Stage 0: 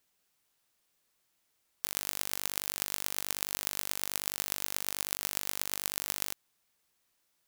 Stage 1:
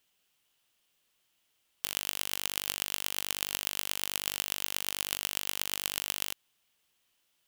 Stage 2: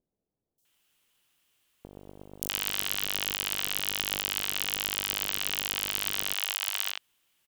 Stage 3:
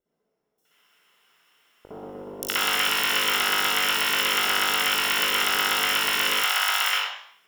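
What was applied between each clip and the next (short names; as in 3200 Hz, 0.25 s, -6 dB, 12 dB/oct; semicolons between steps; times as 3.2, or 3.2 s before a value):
bell 3000 Hz +9.5 dB 0.47 oct
vibrato 0.97 Hz 12 cents; three bands offset in time lows, highs, mids 0.58/0.65 s, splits 620/5000 Hz; gain +4 dB
reverb RT60 0.65 s, pre-delay 56 ms, DRR -8 dB; gain -1 dB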